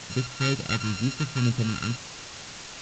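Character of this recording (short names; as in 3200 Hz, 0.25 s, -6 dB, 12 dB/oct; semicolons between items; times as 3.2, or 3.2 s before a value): a buzz of ramps at a fixed pitch in blocks of 32 samples; phasing stages 2, 2.1 Hz, lowest notch 530–1100 Hz; a quantiser's noise floor 6-bit, dither triangular; G.722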